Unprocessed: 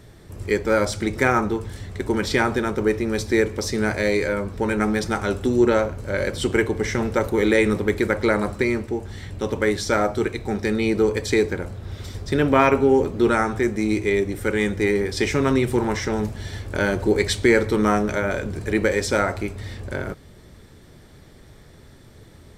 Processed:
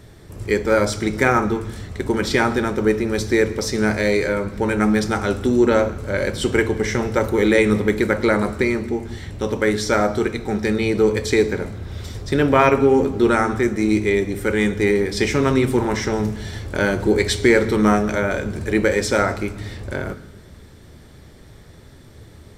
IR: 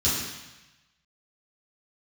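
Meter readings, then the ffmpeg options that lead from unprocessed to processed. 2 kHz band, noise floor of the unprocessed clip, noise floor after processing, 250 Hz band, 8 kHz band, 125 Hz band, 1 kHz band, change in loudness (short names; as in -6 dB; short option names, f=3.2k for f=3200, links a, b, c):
+2.0 dB, -47 dBFS, -44 dBFS, +3.0 dB, +2.5 dB, +2.5 dB, +2.0 dB, +2.5 dB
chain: -filter_complex "[0:a]asplit=2[a][b];[1:a]atrim=start_sample=2205,adelay=15[c];[b][c]afir=irnorm=-1:irlink=0,volume=-26dB[d];[a][d]amix=inputs=2:normalize=0,volume=2dB"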